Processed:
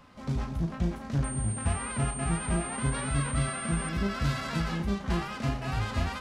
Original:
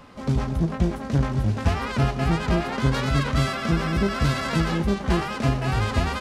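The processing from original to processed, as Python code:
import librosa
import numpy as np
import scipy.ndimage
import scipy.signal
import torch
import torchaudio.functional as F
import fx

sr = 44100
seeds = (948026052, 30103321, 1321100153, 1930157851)

y = fx.peak_eq(x, sr, hz=420.0, db=-4.5, octaves=0.97)
y = fx.doubler(y, sr, ms=35.0, db=-8)
y = fx.pwm(y, sr, carrier_hz=8700.0, at=(1.24, 3.89))
y = y * 10.0 ** (-7.5 / 20.0)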